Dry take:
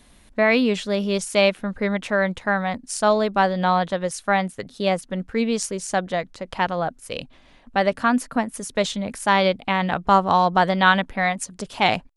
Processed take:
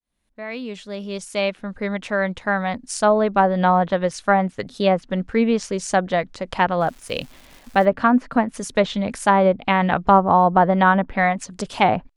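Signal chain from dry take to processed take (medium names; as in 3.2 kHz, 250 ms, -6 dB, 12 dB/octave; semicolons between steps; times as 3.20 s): fade-in on the opening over 3.79 s; low-pass that closes with the level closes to 1.1 kHz, closed at -14.5 dBFS; 6.80–7.84 s: crackle 470 per s -41 dBFS; trim +4 dB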